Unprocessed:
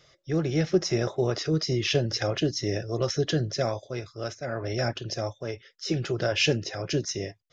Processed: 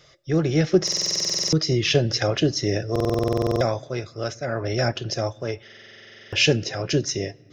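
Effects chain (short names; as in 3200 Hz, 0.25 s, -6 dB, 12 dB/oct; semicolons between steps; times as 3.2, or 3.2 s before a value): on a send at -23 dB: reverb RT60 2.1 s, pre-delay 7 ms; on the sum: stuck buffer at 0.83/2.91/5.63, samples 2048, times 14; gain +5 dB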